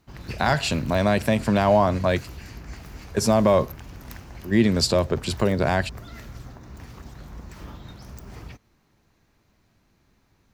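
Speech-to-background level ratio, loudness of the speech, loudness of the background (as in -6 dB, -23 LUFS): 19.0 dB, -22.0 LUFS, -41.0 LUFS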